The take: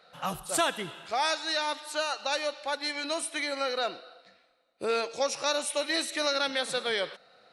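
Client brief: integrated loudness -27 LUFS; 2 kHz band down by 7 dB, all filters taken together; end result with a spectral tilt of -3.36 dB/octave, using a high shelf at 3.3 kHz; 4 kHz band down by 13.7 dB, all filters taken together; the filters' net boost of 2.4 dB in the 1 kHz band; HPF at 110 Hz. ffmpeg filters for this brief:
-af "highpass=110,equalizer=f=1000:t=o:g=6.5,equalizer=f=2000:t=o:g=-8,highshelf=f=3300:g=-9,equalizer=f=4000:t=o:g=-8,volume=1.78"

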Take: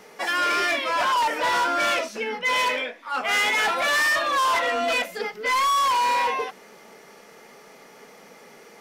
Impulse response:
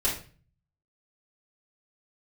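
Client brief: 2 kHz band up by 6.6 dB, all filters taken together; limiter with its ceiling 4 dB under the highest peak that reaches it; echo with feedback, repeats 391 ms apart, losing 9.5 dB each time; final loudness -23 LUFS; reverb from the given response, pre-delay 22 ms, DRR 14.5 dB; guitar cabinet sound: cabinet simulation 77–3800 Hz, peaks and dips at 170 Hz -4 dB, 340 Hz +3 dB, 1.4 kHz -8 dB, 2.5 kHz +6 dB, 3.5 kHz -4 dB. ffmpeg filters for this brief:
-filter_complex "[0:a]equalizer=f=2000:t=o:g=7,alimiter=limit=0.188:level=0:latency=1,aecho=1:1:391|782|1173|1564:0.335|0.111|0.0365|0.012,asplit=2[s0][s1];[1:a]atrim=start_sample=2205,adelay=22[s2];[s1][s2]afir=irnorm=-1:irlink=0,volume=0.0668[s3];[s0][s3]amix=inputs=2:normalize=0,highpass=77,equalizer=f=170:t=q:w=4:g=-4,equalizer=f=340:t=q:w=4:g=3,equalizer=f=1400:t=q:w=4:g=-8,equalizer=f=2500:t=q:w=4:g=6,equalizer=f=3500:t=q:w=4:g=-4,lowpass=f=3800:w=0.5412,lowpass=f=3800:w=1.3066,volume=0.668"

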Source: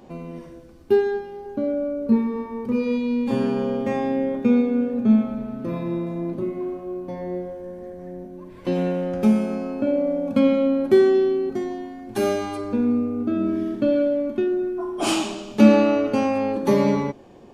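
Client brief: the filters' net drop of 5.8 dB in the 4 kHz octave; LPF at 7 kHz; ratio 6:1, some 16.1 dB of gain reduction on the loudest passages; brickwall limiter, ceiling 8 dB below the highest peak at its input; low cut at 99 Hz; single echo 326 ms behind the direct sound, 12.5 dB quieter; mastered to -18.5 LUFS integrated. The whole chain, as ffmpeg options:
-af "highpass=99,lowpass=7000,equalizer=f=4000:t=o:g=-8,acompressor=threshold=0.0501:ratio=6,alimiter=limit=0.0708:level=0:latency=1,aecho=1:1:326:0.237,volume=4.22"

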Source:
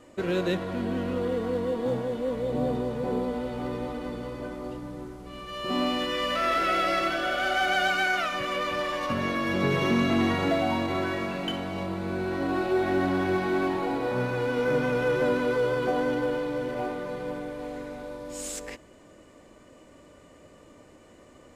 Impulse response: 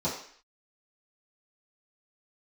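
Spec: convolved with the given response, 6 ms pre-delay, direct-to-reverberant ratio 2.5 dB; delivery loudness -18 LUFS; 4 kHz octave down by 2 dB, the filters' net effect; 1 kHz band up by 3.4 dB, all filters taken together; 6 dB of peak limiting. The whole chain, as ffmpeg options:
-filter_complex "[0:a]equalizer=f=1000:t=o:g=5,equalizer=f=4000:t=o:g=-3.5,alimiter=limit=0.126:level=0:latency=1,asplit=2[s0][s1];[1:a]atrim=start_sample=2205,adelay=6[s2];[s1][s2]afir=irnorm=-1:irlink=0,volume=0.282[s3];[s0][s3]amix=inputs=2:normalize=0,volume=2.24"

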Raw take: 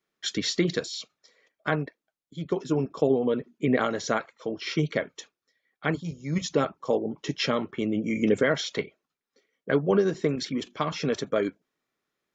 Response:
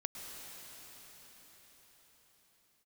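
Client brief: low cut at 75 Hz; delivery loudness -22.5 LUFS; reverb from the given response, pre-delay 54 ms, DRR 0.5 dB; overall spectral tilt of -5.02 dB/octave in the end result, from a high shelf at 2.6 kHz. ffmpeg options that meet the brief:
-filter_complex "[0:a]highpass=75,highshelf=f=2600:g=-4,asplit=2[s0][s1];[1:a]atrim=start_sample=2205,adelay=54[s2];[s1][s2]afir=irnorm=-1:irlink=0,volume=0.944[s3];[s0][s3]amix=inputs=2:normalize=0,volume=1.58"

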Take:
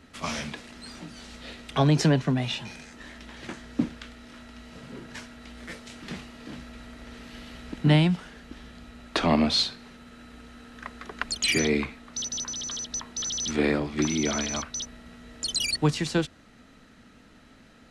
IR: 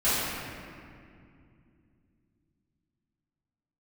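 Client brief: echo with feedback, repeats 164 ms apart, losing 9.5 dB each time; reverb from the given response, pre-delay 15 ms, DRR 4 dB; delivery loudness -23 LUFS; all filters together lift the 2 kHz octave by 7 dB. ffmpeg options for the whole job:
-filter_complex "[0:a]equalizer=f=2000:t=o:g=8.5,aecho=1:1:164|328|492|656:0.335|0.111|0.0365|0.012,asplit=2[s0][s1];[1:a]atrim=start_sample=2205,adelay=15[s2];[s1][s2]afir=irnorm=-1:irlink=0,volume=0.112[s3];[s0][s3]amix=inputs=2:normalize=0,volume=1.06"

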